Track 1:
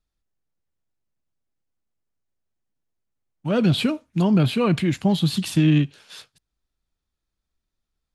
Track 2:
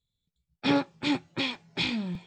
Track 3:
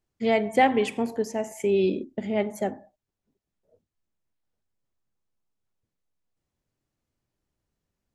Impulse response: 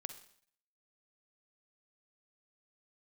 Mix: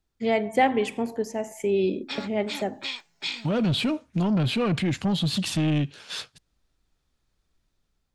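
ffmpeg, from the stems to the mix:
-filter_complex "[0:a]lowpass=8.9k,asoftclip=type=tanh:threshold=-16.5dB,volume=1dB[a];[1:a]alimiter=limit=-16dB:level=0:latency=1:release=447,highpass=f=1.3k:p=1,highshelf=f=7.1k:g=10.5,adelay=1450,volume=-9dB[b];[2:a]volume=-1dB[c];[a][b]amix=inputs=2:normalize=0,dynaudnorm=f=270:g=5:m=7dB,alimiter=limit=-19dB:level=0:latency=1:release=293,volume=0dB[d];[c][d]amix=inputs=2:normalize=0"

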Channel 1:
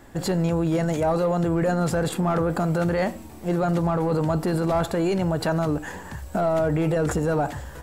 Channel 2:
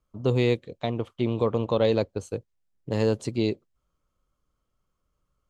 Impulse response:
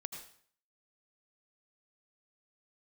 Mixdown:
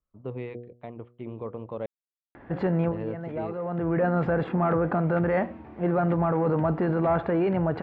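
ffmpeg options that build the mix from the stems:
-filter_complex "[0:a]highpass=f=110:p=1,acompressor=mode=upward:threshold=-42dB:ratio=2.5,adelay=2350,volume=-0.5dB[a];[1:a]bandreject=f=120.5:t=h:w=4,bandreject=f=241:t=h:w=4,bandreject=f=361.5:t=h:w=4,bandreject=f=482:t=h:w=4,bandreject=f=602.5:t=h:w=4,bandreject=f=723:t=h:w=4,volume=-11dB,asplit=3[b][c][d];[b]atrim=end=1.86,asetpts=PTS-STARTPTS,afade=t=out:st=1.856:d=0.004:c=hsin[e];[c]atrim=start=1.86:end=2.6,asetpts=PTS-STARTPTS,volume=0[f];[d]atrim=start=2.6,asetpts=PTS-STARTPTS,afade=t=in:d=0.004:c=hsin[g];[e][f][g]concat=n=3:v=0:a=1,asplit=2[h][i];[i]apad=whole_len=448723[j];[a][j]sidechaincompress=threshold=-40dB:ratio=8:attack=6.8:release=588[k];[k][h]amix=inputs=2:normalize=0,lowpass=f=2.3k:w=0.5412,lowpass=f=2.3k:w=1.3066"

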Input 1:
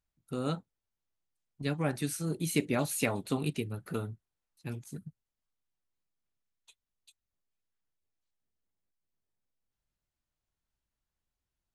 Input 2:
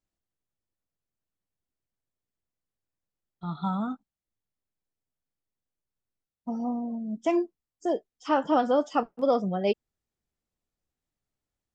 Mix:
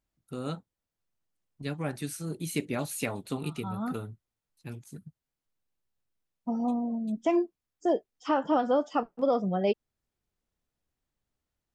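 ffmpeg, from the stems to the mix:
-filter_complex "[0:a]volume=-2dB,asplit=2[a][b];[1:a]highshelf=f=4.7k:g=-6.5,volume=1.5dB[c];[b]apad=whole_len=518155[d];[c][d]sidechaincompress=threshold=-47dB:ratio=4:attack=25:release=165[e];[a][e]amix=inputs=2:normalize=0,alimiter=limit=-16dB:level=0:latency=1:release=345"

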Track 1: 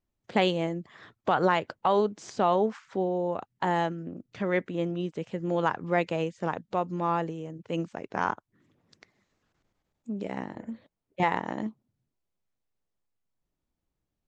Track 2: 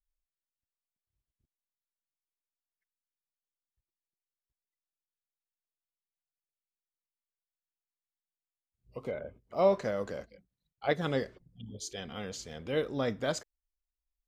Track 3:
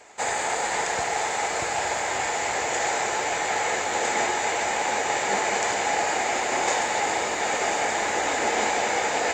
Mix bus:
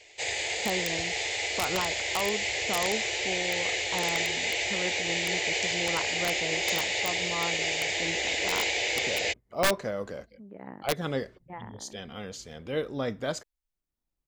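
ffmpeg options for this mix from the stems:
-filter_complex "[0:a]lowpass=f=2.1k:w=0.5412,lowpass=f=2.1k:w=1.3066,adelay=300,volume=-7.5dB[a];[1:a]volume=0.5dB,asplit=2[b][c];[2:a]firequalizer=gain_entry='entry(100,0);entry(200,-25);entry(330,-7);entry(580,-8);entry(850,-18);entry(1300,-24);entry(2000,-1);entry(2900,4);entry(5400,0);entry(9800,-17)':delay=0.05:min_phase=1,volume=1dB[d];[c]apad=whole_len=642950[e];[a][e]sidechaincompress=threshold=-55dB:ratio=3:attack=50:release=357[f];[f][b][d]amix=inputs=3:normalize=0,aeval=exprs='(mod(7.08*val(0)+1,2)-1)/7.08':c=same"

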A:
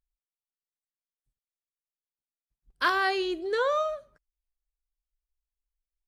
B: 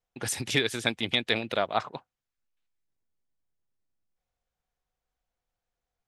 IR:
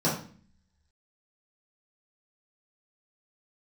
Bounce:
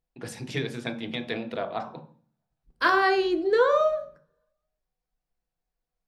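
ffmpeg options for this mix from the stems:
-filter_complex "[0:a]volume=2dB,asplit=2[a][b];[b]volume=-15.5dB[c];[1:a]volume=-7.5dB,asplit=2[d][e];[e]volume=-14.5dB[f];[2:a]atrim=start_sample=2205[g];[c][f]amix=inputs=2:normalize=0[h];[h][g]afir=irnorm=-1:irlink=0[i];[a][d][i]amix=inputs=3:normalize=0,highshelf=f=4k:g=-7"

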